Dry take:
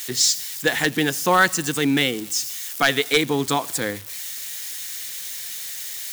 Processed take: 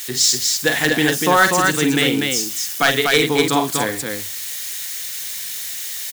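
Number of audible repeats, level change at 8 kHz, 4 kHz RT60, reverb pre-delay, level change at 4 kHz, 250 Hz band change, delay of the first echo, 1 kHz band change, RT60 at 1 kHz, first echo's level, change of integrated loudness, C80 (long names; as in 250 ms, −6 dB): 2, +4.0 dB, no reverb audible, no reverb audible, +4.0 dB, +4.0 dB, 46 ms, +4.0 dB, no reverb audible, −8.0 dB, +4.0 dB, no reverb audible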